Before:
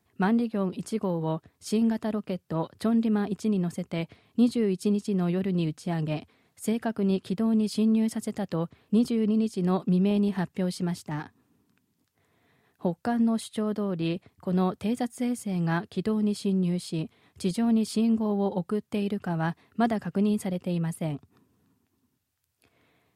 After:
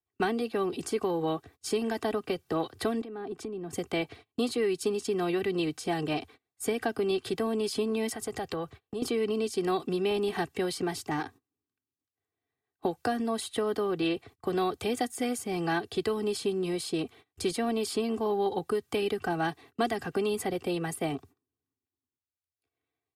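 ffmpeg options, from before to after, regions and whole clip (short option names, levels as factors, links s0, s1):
-filter_complex "[0:a]asettb=1/sr,asplit=3[s0][s1][s2];[s0]atrim=end=3.014[s3];[s1]atrim=start=3.01:end=3.73,asetpts=PTS-STARTPTS,afade=t=in:d=0.004:c=qsin,afade=t=out:st=0.716:d=0.004:c=qsin,highpass=150,highshelf=f=2500:g=-10,acompressor=threshold=0.0158:ratio=12:attack=3.2:release=140:knee=1:detection=peak[s4];[s2]atrim=start=3.726[s5];[s3][s4]acrossfade=d=0.004:c1=hsin:c2=qsin[s6];[s6][s5]acrossfade=d=0.004:c1=qsin:c2=hsin,asettb=1/sr,asplit=3[s7][s8][s9];[s7]atrim=end=8.094[s10];[s8]atrim=start=8.09:end=9.02,asetpts=PTS-STARTPTS,afade=t=in:d=0.004:c=qsin,afade=t=out:st=0.926:d=0.004:c=qsin,acompressor=threshold=0.0355:ratio=6:attack=3.2:release=140:knee=1:detection=peak,equalizer=f=270:t=o:w=0.82:g=-7.5[s11];[s9]atrim=start=9.016[s12];[s10][s11]acrossfade=d=0.004:c1=hsin:c2=qsin[s13];[s13][s12]acrossfade=d=0.004:c1=qsin:c2=hsin,agate=range=0.0355:threshold=0.00316:ratio=16:detection=peak,aecho=1:1:2.6:0.7,acrossover=split=200|420|1000|2100[s14][s15][s16][s17][s18];[s14]acompressor=threshold=0.00355:ratio=4[s19];[s15]acompressor=threshold=0.01:ratio=4[s20];[s16]acompressor=threshold=0.0141:ratio=4[s21];[s17]acompressor=threshold=0.00562:ratio=4[s22];[s18]acompressor=threshold=0.00891:ratio=4[s23];[s19][s20][s21][s22][s23]amix=inputs=5:normalize=0,volume=1.78"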